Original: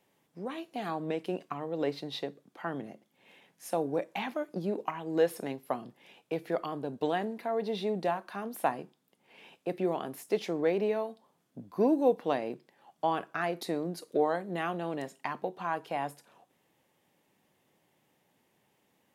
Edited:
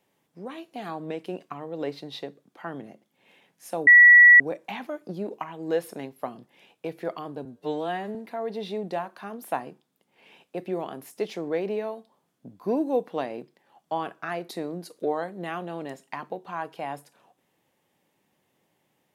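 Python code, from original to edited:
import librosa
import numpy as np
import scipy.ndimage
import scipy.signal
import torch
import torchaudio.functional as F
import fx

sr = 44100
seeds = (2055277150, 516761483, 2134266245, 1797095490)

y = fx.edit(x, sr, fx.insert_tone(at_s=3.87, length_s=0.53, hz=1940.0, db=-8.5),
    fx.stretch_span(start_s=6.92, length_s=0.35, factor=2.0), tone=tone)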